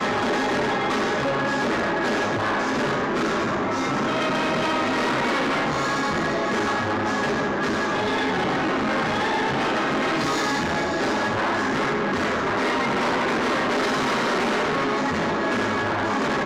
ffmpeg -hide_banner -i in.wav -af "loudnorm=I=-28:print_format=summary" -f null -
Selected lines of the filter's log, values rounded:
Input Integrated:    -22.8 LUFS
Input True Peak:     -18.8 dBTP
Input LRA:             0.6 LU
Input Threshold:     -32.8 LUFS